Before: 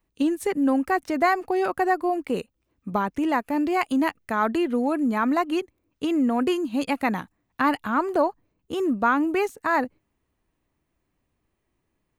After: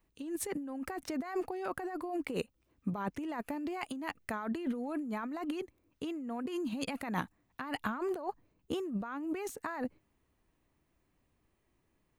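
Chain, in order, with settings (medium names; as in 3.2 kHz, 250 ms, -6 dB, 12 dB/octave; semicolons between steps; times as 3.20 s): compressor with a negative ratio -30 dBFS, ratio -1; trim -7 dB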